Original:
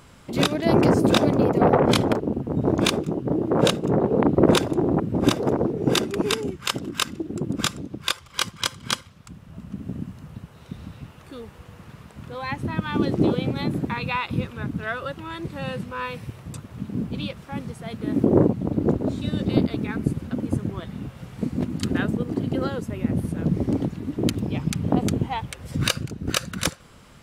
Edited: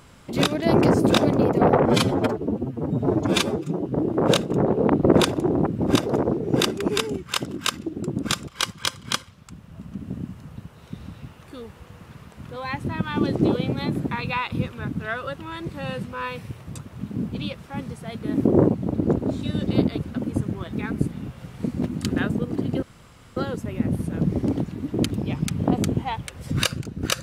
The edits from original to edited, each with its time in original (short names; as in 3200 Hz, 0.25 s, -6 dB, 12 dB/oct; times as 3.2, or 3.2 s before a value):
1.86–3.19 stretch 1.5×
7.81–8.26 cut
19.79–20.17 move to 20.9
22.61 insert room tone 0.54 s